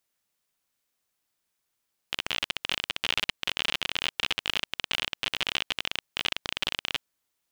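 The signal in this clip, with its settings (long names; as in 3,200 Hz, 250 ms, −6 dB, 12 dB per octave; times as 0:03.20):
Geiger counter clicks 39 per second −10 dBFS 4.87 s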